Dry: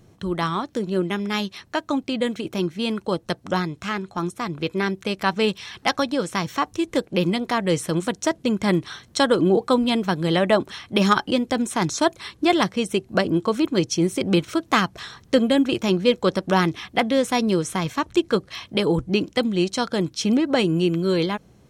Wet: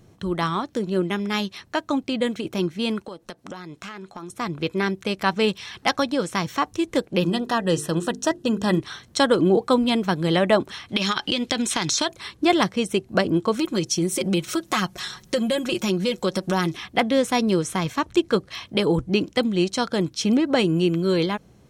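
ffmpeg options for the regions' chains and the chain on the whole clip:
-filter_complex "[0:a]asettb=1/sr,asplit=3[s0][s1][s2];[s0]atrim=end=3.024[s3];[s1]atrim=start=3.02:end=4.3,asetpts=PTS-STARTPTS,afade=t=in:d=0.004:c=qsin,afade=t=out:st=1.276:d=0.004:c=qsin,equalizer=f=82:t=o:w=1.7:g=-12.5,acompressor=threshold=0.0251:ratio=8:attack=3.2:release=140:knee=1:detection=peak[s4];[s2]atrim=start=4.296[s5];[s3][s4]acrossfade=d=0.004:c1=hsin:c2=qsin[s6];[s6][s5]acrossfade=d=0.004:c1=qsin:c2=hsin,asettb=1/sr,asplit=3[s7][s8][s9];[s7]atrim=end=7.204[s10];[s8]atrim=start=7.2:end=8.8,asetpts=PTS-STARTPTS,afade=t=in:d=0.004:c=qsin,afade=t=out:st=1.596:d=0.004:c=qsin,asuperstop=centerf=2200:order=20:qfactor=5.4,bandreject=f=50:t=h:w=6,bandreject=f=100:t=h:w=6,bandreject=f=150:t=h:w=6,bandreject=f=200:t=h:w=6,bandreject=f=250:t=h:w=6,bandreject=f=300:t=h:w=6,bandreject=f=350:t=h:w=6,bandreject=f=400:t=h:w=6,bandreject=f=450:t=h:w=6[s11];[s9]atrim=start=8.796[s12];[s10][s11]acrossfade=d=0.004:c1=hsin:c2=qsin[s13];[s13][s12]acrossfade=d=0.004:c1=qsin:c2=hsin,asettb=1/sr,asplit=3[s14][s15][s16];[s14]atrim=end=10.894[s17];[s15]atrim=start=10.89:end=12.09,asetpts=PTS-STARTPTS,afade=t=in:d=0.004:c=qsin,afade=t=out:st=1.196:d=0.004:c=qsin,equalizer=f=3600:w=0.57:g=13.5,acompressor=threshold=0.126:ratio=12:attack=3.2:release=140:knee=1:detection=peak[s18];[s16]atrim=start=12.086[s19];[s17][s18]acrossfade=d=0.004:c1=hsin:c2=qsin[s20];[s20][s19]acrossfade=d=0.004:c1=qsin:c2=hsin,asettb=1/sr,asplit=3[s21][s22][s23];[s21]atrim=end=13.594[s24];[s22]atrim=start=13.59:end=16.77,asetpts=PTS-STARTPTS,afade=t=in:d=0.004:c=qsin,afade=t=out:st=3.176:d=0.004:c=qsin,highshelf=f=4700:g=9.5,aecho=1:1:5.5:0.67,atrim=end_sample=140238,acompressor=threshold=0.0891:ratio=2.5:attack=3.2:release=140:knee=1:detection=peak[s25];[s23]atrim=start=16.766[s26];[s24][s25]acrossfade=d=0.004:c1=hsin:c2=qsin[s27];[s27][s26]acrossfade=d=0.004:c1=qsin:c2=hsin"

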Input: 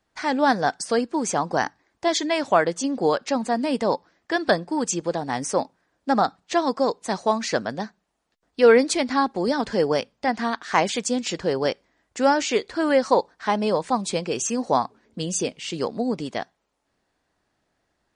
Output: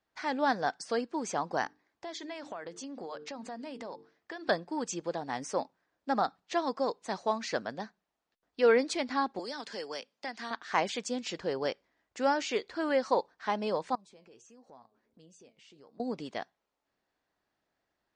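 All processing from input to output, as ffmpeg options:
-filter_complex "[0:a]asettb=1/sr,asplit=3[s0][s1][s2];[s0]atrim=end=1.664[s3];[s1]atrim=start=1.66:end=4.49,asetpts=PTS-STARTPTS,afade=t=in:d=0.004:c=qsin,afade=t=out:st=2.826:d=0.004:c=qsin,bandreject=f=50:t=h:w=6,bandreject=f=100:t=h:w=6,bandreject=f=150:t=h:w=6,bandreject=f=200:t=h:w=6,bandreject=f=250:t=h:w=6,bandreject=f=300:t=h:w=6,bandreject=f=350:t=h:w=6,bandreject=f=400:t=h:w=6,bandreject=f=450:t=h:w=6,acompressor=threshold=0.0398:ratio=8:attack=3.2:release=140:knee=1:detection=peak[s4];[s2]atrim=start=4.486[s5];[s3][s4]acrossfade=d=0.004:c1=hsin:c2=qsin[s6];[s6][s5]acrossfade=d=0.004:c1=qsin:c2=hsin,asettb=1/sr,asplit=3[s7][s8][s9];[s7]atrim=end=9.394[s10];[s8]atrim=start=9.39:end=10.51,asetpts=PTS-STARTPTS,afade=t=in:d=0.004:c=qsin,afade=t=out:st=1.116:d=0.004:c=qsin,highpass=220,aemphasis=mode=production:type=cd,acrossover=split=500|1500[s11][s12][s13];[s11]acompressor=threshold=0.0178:ratio=4[s14];[s12]acompressor=threshold=0.0158:ratio=4[s15];[s13]acompressor=threshold=0.0282:ratio=4[s16];[s14][s15][s16]amix=inputs=3:normalize=0[s17];[s9]atrim=start=10.506[s18];[s10][s17]acrossfade=d=0.004:c1=hsin:c2=qsin[s19];[s19][s18]acrossfade=d=0.004:c1=qsin:c2=hsin,asettb=1/sr,asplit=3[s20][s21][s22];[s20]atrim=end=13.954[s23];[s21]atrim=start=13.95:end=16,asetpts=PTS-STARTPTS,afade=t=in:d=0.004:c=qsin,afade=t=out:st=2.046:d=0.004:c=qsin,flanger=delay=6.2:depth=3.3:regen=72:speed=1.5:shape=sinusoidal,equalizer=f=3200:w=0.57:g=-4.5,acompressor=threshold=0.00355:ratio=3:attack=3.2:release=140:knee=1:detection=peak[s24];[s22]atrim=start=15.996[s25];[s23][s24]acrossfade=d=0.004:c1=hsin:c2=qsin[s26];[s26][s25]acrossfade=d=0.004:c1=qsin:c2=hsin,lowpass=6000,lowshelf=f=210:g=-7,volume=0.398"

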